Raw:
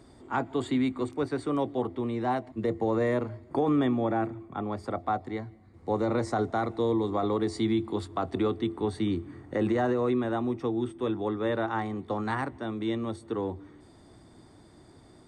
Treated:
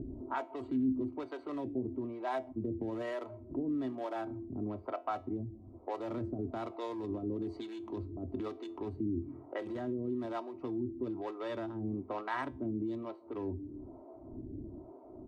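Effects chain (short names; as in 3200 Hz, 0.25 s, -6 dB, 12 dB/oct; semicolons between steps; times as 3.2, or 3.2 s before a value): Wiener smoothing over 25 samples; low-pass opened by the level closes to 610 Hz, open at -23.5 dBFS; comb 3.1 ms, depth 55%; upward compressor, threshold -32 dBFS; limiter -24.5 dBFS, peak gain reduction 9 dB; compressor, threshold -29 dBFS, peak gain reduction 3 dB; harmonic tremolo 1.1 Hz, depth 100%, crossover 430 Hz; resonator 130 Hz, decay 0.3 s, harmonics all, mix 50%; gain +6.5 dB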